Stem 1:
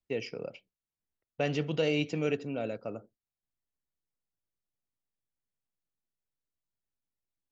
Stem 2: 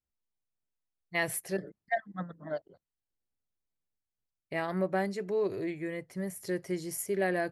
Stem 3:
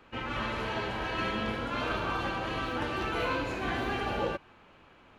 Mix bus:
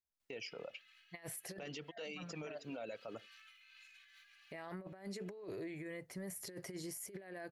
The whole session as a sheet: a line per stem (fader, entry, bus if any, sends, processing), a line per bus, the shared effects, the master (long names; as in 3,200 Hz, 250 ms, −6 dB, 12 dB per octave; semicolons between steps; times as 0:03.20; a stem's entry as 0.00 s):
+1.0 dB, 0.20 s, bus A, no send, reverb reduction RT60 1.2 s
−7.5 dB, 0.00 s, no bus, no send, automatic gain control gain up to 8 dB; amplitude modulation by smooth noise, depth 60%
−15.0 dB, 0.35 s, bus A, no send, inverse Chebyshev high-pass filter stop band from 570 Hz, stop band 60 dB; comb filter 2.4 ms, depth 88%; compressor whose output falls as the input rises −49 dBFS, ratio −1; automatic ducking −7 dB, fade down 0.75 s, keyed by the second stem
bus A: 0.0 dB, low-shelf EQ 400 Hz −8 dB; downward compressor, threshold −37 dBFS, peak gain reduction 10.5 dB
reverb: not used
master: low-shelf EQ 370 Hz −5 dB; compressor whose output falls as the input rises −41 dBFS, ratio −0.5; brickwall limiter −37 dBFS, peak gain reduction 11 dB